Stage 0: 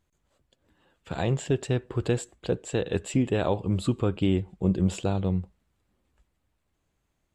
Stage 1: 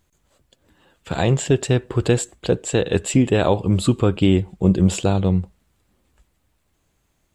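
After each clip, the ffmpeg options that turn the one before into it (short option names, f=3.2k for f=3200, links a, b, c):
-af "highshelf=f=4.8k:g=5.5,volume=8dB"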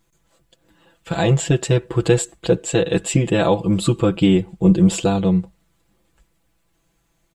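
-af "aecho=1:1:6:0.86,volume=-1dB"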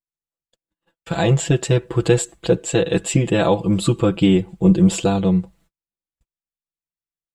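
-af "agate=range=-39dB:threshold=-51dB:ratio=16:detection=peak"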